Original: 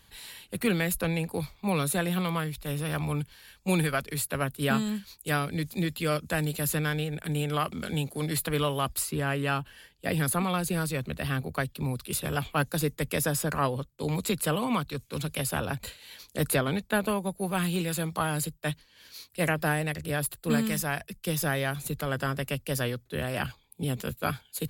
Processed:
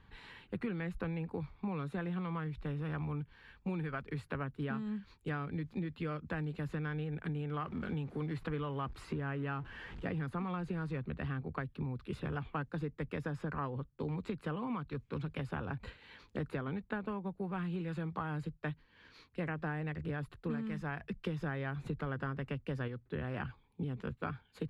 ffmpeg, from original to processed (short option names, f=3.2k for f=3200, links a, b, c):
-filter_complex "[0:a]asettb=1/sr,asplit=3[a][b][c];[a]atrim=end=7.584[d];[b]atrim=start=7.58:end=11,asetpts=PTS-STARTPTS,afade=t=in:d=0.004:c=qsin,afade=t=out:st=3.416:d=0.004:c=qsin,aeval=exprs='val(0)+0.5*0.01*sgn(val(0))':c=same[e];[c]atrim=start=10.996[f];[d][e]acrossfade=d=0.004:c1=hsin:c2=qsin[g];[g][f]acrossfade=d=0.004:c1=qsin:c2=hsin,asplit=3[h][i][j];[h]atrim=end=21.032[k];[i]atrim=start=21.028:end=22.882,asetpts=PTS-STARTPTS,volume=4.5dB[l];[j]atrim=start=22.878[m];[k][l]acrossfade=d=0.004:c1=hsin:c2=hsin[n];[n][m]acrossfade=d=0.004:c1=hsin:c2=hsin,lowpass=1.6k,equalizer=f=620:t=o:w=0.52:g=-8.5,acompressor=threshold=-37dB:ratio=6,volume=1.5dB"